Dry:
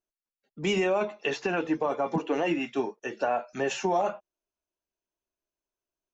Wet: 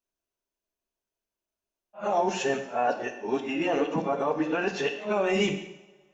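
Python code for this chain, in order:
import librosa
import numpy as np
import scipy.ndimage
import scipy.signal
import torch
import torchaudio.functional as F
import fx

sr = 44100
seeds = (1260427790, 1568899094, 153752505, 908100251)

y = x[::-1].copy()
y = fx.rev_double_slope(y, sr, seeds[0], early_s=0.83, late_s=2.5, knee_db=-24, drr_db=5.0)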